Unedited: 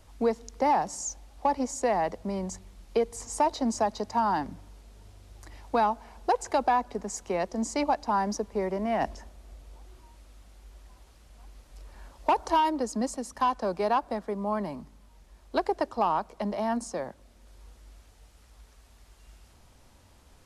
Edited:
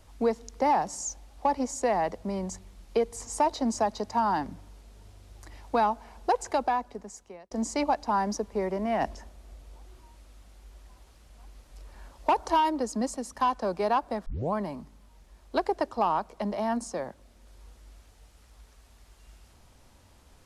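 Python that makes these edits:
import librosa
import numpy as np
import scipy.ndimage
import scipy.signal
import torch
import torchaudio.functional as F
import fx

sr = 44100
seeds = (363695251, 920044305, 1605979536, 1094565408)

y = fx.edit(x, sr, fx.fade_out_span(start_s=6.42, length_s=1.09),
    fx.tape_start(start_s=14.26, length_s=0.27), tone=tone)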